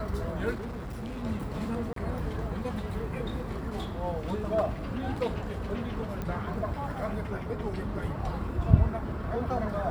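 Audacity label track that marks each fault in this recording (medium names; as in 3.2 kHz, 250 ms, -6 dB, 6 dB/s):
0.540000	1.250000	clipped -33.5 dBFS
1.930000	1.960000	dropout 33 ms
6.220000	6.220000	pop -22 dBFS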